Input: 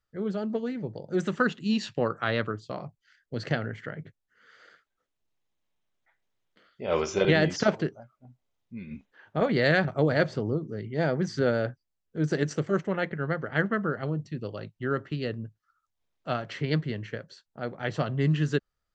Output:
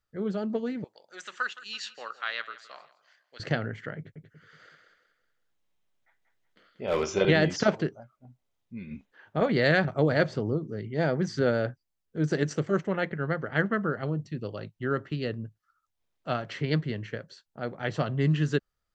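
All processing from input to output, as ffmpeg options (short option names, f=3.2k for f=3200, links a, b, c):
-filter_complex "[0:a]asettb=1/sr,asplit=3[a][b][c];[a]atrim=end=0.844[d];[b]atrim=start=0.84:end=3.4,asetpts=PTS-STARTPTS,afade=t=in:d=0.004:c=qsin,afade=t=out:st=2.556:d=0.004:c=qsin,highpass=1.4k,aecho=1:1:166|332|498:0.133|0.0547|0.0224,atrim=end_sample=112896[e];[c]atrim=start=3.396[f];[d][e]acrossfade=d=0.004:c1=hsin:c2=qsin[g];[g][f]acrossfade=d=0.004:c1=qsin:c2=hsin,asettb=1/sr,asplit=3[h][i][j];[h]atrim=end=3.974[k];[i]atrim=start=3.97:end=7.04,asetpts=PTS-STARTPTS,afade=t=in:d=0.004:c=qsin,afade=t=out:st=3.066:d=0.004:c=qsin,aecho=1:1:186|372|558|744:0.473|0.175|0.0648|0.024,atrim=end_sample=135387,volume=19.5dB,asoftclip=hard,volume=-19.5dB[l];[j]atrim=start=7.036[m];[k][l]acrossfade=d=0.004:c1=hsin:c2=qsin[n];[n][m]acrossfade=d=0.004:c1=qsin:c2=hsin"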